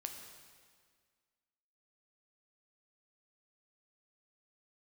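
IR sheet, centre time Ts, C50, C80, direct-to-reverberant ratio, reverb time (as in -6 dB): 42 ms, 5.5 dB, 6.5 dB, 3.5 dB, 1.8 s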